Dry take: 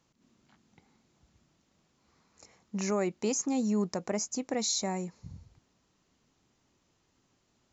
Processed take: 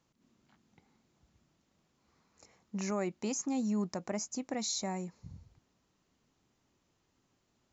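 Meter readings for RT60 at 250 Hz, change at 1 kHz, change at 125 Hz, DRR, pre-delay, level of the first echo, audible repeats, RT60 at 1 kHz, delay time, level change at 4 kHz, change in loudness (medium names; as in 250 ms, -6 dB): no reverb, -3.5 dB, -3.0 dB, no reverb, no reverb, no echo, no echo, no reverb, no echo, -4.5 dB, -4.0 dB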